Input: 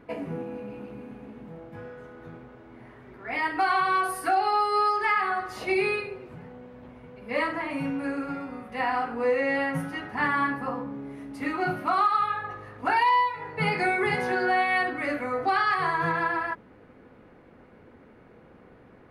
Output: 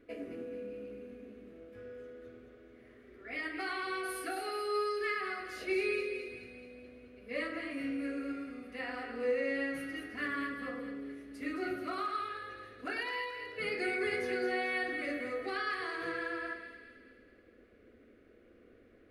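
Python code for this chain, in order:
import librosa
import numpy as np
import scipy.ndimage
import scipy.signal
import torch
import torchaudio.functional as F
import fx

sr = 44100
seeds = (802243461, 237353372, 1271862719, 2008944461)

p1 = fx.fixed_phaser(x, sr, hz=370.0, stages=4)
p2 = p1 + fx.echo_split(p1, sr, split_hz=1700.0, low_ms=101, high_ms=216, feedback_pct=52, wet_db=-7.0, dry=0)
y = p2 * librosa.db_to_amplitude(-6.5)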